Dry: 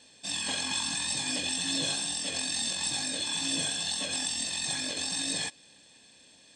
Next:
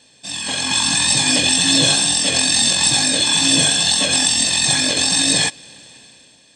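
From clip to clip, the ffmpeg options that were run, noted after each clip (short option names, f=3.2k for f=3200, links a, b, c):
-af "equalizer=f=130:w=5.8:g=8,dynaudnorm=f=150:g=9:m=11dB,volume=5dB"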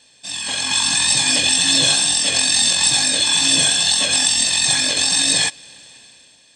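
-af "equalizer=f=210:w=0.37:g=-7"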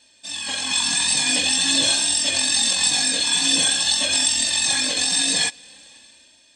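-af "flanger=delay=3.2:depth=1:regen=-20:speed=0.47:shape=sinusoidal"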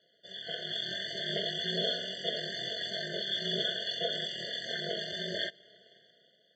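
-af "highpass=f=300:w=0.5412,highpass=f=300:w=1.3066,equalizer=f=370:t=q:w=4:g=-4,equalizer=f=590:t=q:w=4:g=4,equalizer=f=1.2k:t=q:w=4:g=-10,equalizer=f=1.7k:t=q:w=4:g=-6,equalizer=f=2.5k:t=q:w=4:g=-7,lowpass=f=3.1k:w=0.5412,lowpass=f=3.1k:w=1.3066,aeval=exprs='val(0)*sin(2*PI*100*n/s)':c=same,afftfilt=real='re*eq(mod(floor(b*sr/1024/710),2),0)':imag='im*eq(mod(floor(b*sr/1024/710),2),0)':win_size=1024:overlap=0.75"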